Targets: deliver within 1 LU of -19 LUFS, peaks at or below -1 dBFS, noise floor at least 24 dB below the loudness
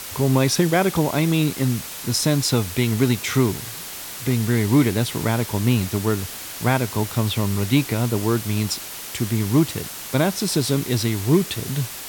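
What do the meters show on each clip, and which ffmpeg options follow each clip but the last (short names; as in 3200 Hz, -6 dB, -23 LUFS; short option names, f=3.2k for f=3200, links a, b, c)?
noise floor -34 dBFS; noise floor target -46 dBFS; loudness -21.5 LUFS; peak -5.5 dBFS; loudness target -19.0 LUFS
-> -af "afftdn=nr=12:nf=-34"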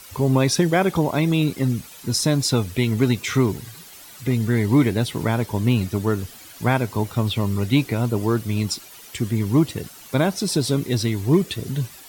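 noise floor -43 dBFS; noise floor target -46 dBFS
-> -af "afftdn=nr=6:nf=-43"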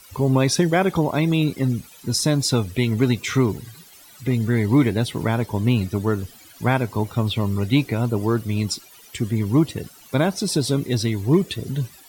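noise floor -47 dBFS; loudness -21.5 LUFS; peak -6.5 dBFS; loudness target -19.0 LUFS
-> -af "volume=2.5dB"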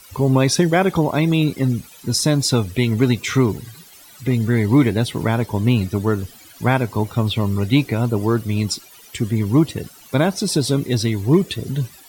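loudness -19.0 LUFS; peak -4.0 dBFS; noise floor -45 dBFS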